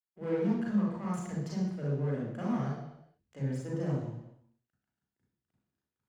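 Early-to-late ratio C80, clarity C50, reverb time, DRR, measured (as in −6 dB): 5.0 dB, 0.5 dB, 0.80 s, −4.5 dB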